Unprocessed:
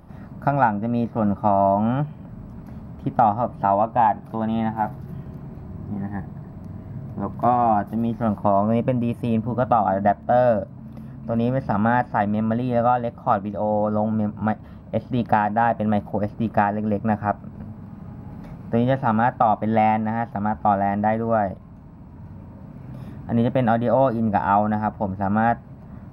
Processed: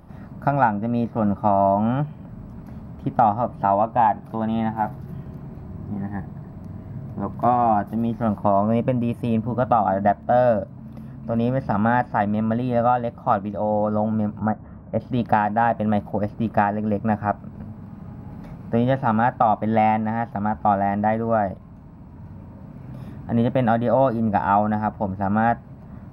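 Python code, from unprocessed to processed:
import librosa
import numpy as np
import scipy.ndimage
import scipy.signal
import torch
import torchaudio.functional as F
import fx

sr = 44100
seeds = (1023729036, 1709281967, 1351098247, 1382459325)

y = fx.lowpass(x, sr, hz=fx.line((14.39, 1500.0), (14.99, 2100.0)), slope=24, at=(14.39, 14.99), fade=0.02)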